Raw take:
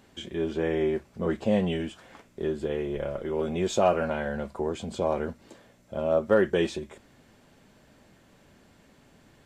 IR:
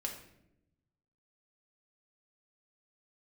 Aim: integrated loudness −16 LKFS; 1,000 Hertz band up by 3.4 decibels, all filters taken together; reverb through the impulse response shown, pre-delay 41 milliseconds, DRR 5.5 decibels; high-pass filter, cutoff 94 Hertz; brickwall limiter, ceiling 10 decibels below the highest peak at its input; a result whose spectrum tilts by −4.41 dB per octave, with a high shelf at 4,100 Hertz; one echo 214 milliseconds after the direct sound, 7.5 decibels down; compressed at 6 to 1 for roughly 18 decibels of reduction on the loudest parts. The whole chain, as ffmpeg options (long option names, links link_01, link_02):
-filter_complex "[0:a]highpass=94,equalizer=frequency=1000:width_type=o:gain=4.5,highshelf=frequency=4100:gain=7.5,acompressor=threshold=-35dB:ratio=6,alimiter=level_in=9dB:limit=-24dB:level=0:latency=1,volume=-9dB,aecho=1:1:214:0.422,asplit=2[link_01][link_02];[1:a]atrim=start_sample=2205,adelay=41[link_03];[link_02][link_03]afir=irnorm=-1:irlink=0,volume=-6dB[link_04];[link_01][link_04]amix=inputs=2:normalize=0,volume=25.5dB"